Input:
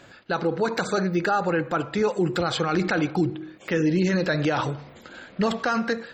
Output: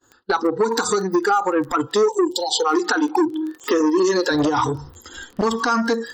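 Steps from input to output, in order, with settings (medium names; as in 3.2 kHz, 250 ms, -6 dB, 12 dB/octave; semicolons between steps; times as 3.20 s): static phaser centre 620 Hz, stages 6; expander -46 dBFS; 1.87–4.31 s: high-pass 310 Hz 12 dB/octave; compression 12:1, threshold -32 dBFS, peak gain reduction 12.5 dB; spectral noise reduction 17 dB; crackle 18 per s -49 dBFS; 2.05–2.65 s: spectral selection erased 980–2800 Hz; dynamic bell 2 kHz, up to -5 dB, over -55 dBFS, Q 1.2; loudness maximiser +28 dB; transformer saturation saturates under 490 Hz; trim -7 dB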